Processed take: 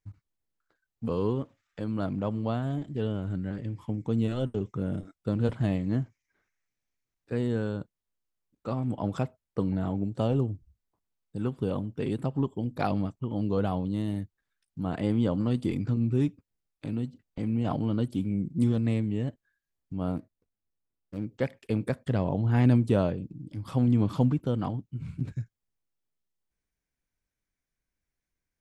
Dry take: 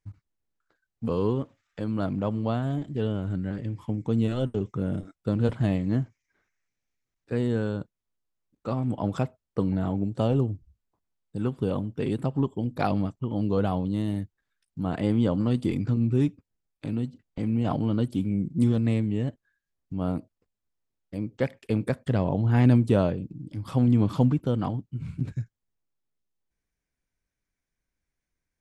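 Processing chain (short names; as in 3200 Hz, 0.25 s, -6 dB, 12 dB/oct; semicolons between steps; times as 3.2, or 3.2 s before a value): 20.16–21.25 median filter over 41 samples; gain -2.5 dB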